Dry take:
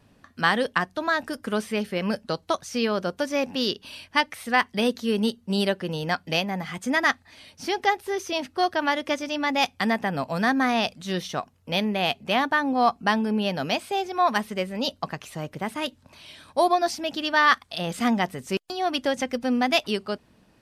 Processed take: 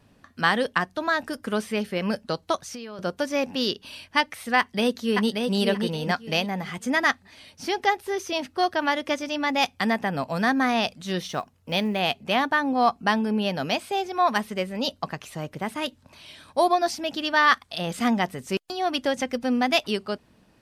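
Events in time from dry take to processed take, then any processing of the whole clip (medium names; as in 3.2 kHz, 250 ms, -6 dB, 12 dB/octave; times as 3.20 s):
2.56–2.99 s: compression 12:1, threshold -33 dBFS
4.58–5.53 s: echo throw 580 ms, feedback 20%, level -4 dB
11.25–12.00 s: block-companded coder 7-bit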